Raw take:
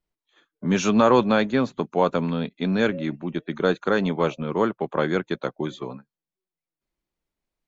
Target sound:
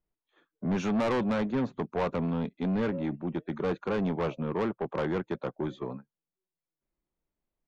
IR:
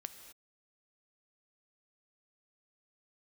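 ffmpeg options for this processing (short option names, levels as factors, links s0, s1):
-af "lowpass=f=1100:p=1,asoftclip=type=tanh:threshold=0.0708,volume=0.891"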